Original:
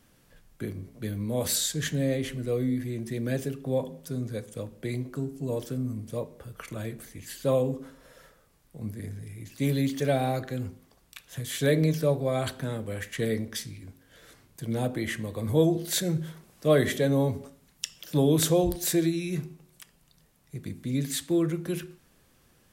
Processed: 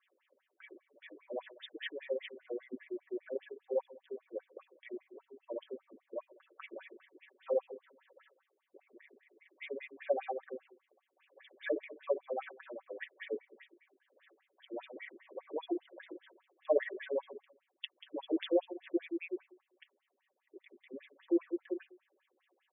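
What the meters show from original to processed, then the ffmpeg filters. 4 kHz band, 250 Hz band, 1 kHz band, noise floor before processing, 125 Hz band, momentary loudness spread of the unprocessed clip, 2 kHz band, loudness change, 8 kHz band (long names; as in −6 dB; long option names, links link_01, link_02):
−16.0 dB, −13.5 dB, −9.5 dB, −63 dBFS, below −40 dB, 16 LU, −9.5 dB, −11.0 dB, below −40 dB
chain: -af "equalizer=frequency=1400:width_type=o:width=0.31:gain=-7,aecho=1:1:5.3:0.67,afftfilt=real='re*between(b*sr/1024,360*pow(2600/360,0.5+0.5*sin(2*PI*5*pts/sr))/1.41,360*pow(2600/360,0.5+0.5*sin(2*PI*5*pts/sr))*1.41)':imag='im*between(b*sr/1024,360*pow(2600/360,0.5+0.5*sin(2*PI*5*pts/sr))/1.41,360*pow(2600/360,0.5+0.5*sin(2*PI*5*pts/sr))*1.41)':win_size=1024:overlap=0.75,volume=-5dB"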